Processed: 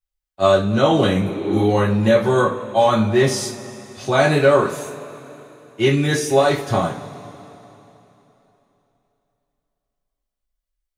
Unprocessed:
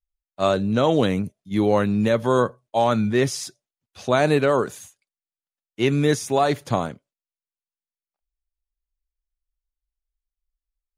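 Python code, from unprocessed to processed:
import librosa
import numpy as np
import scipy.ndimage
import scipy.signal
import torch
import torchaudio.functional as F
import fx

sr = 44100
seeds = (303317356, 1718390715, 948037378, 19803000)

y = fx.spec_repair(x, sr, seeds[0], start_s=1.26, length_s=0.32, low_hz=260.0, high_hz=5400.0, source='both')
y = fx.rev_double_slope(y, sr, seeds[1], early_s=0.28, late_s=3.3, knee_db=-22, drr_db=-5.5)
y = F.gain(torch.from_numpy(y), -2.0).numpy()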